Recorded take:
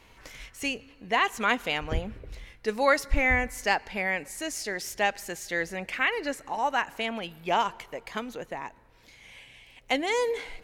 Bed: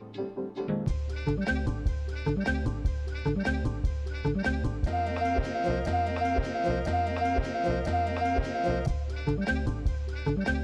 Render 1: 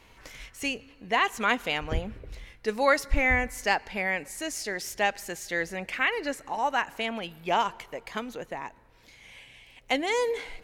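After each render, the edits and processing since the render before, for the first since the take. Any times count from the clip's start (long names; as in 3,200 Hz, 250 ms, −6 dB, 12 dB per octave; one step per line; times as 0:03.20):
no processing that can be heard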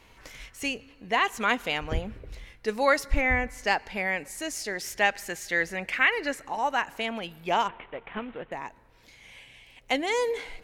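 0:03.20–0:03.65: high-shelf EQ 4,800 Hz → 7,600 Hz −11.5 dB
0:04.83–0:06.45: parametric band 1,900 Hz +4.5 dB 1.2 octaves
0:07.68–0:08.52: variable-slope delta modulation 16 kbit/s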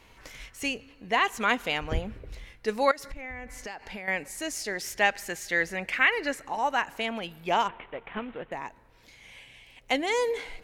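0:02.91–0:04.08: downward compressor 20 to 1, threshold −34 dBFS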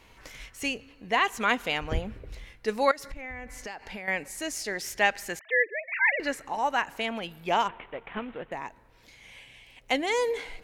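0:05.39–0:06.20: three sine waves on the formant tracks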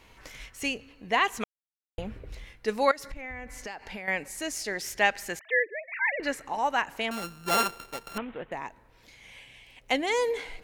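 0:01.44–0:01.98: silence
0:05.59–0:06.23: high-frequency loss of the air 440 metres
0:07.11–0:08.18: samples sorted by size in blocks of 32 samples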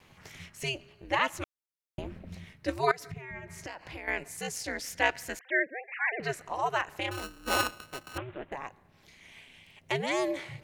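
ring modulation 130 Hz
pitch vibrato 1.4 Hz 19 cents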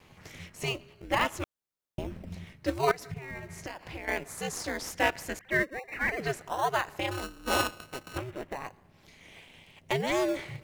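in parallel at −8 dB: sample-and-hold swept by an LFO 21×, swing 60% 0.39 Hz
on the sum: soft clipping −11 dBFS, distortion −24 dB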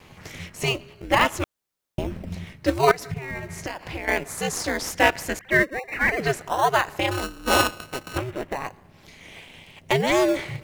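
level +8 dB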